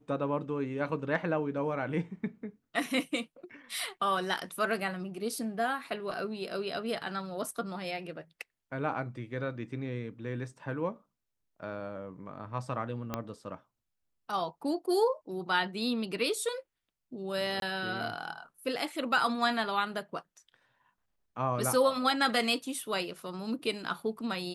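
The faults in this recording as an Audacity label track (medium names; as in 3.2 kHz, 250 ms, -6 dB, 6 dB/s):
13.140000	13.140000	pop -18 dBFS
17.600000	17.620000	dropout 22 ms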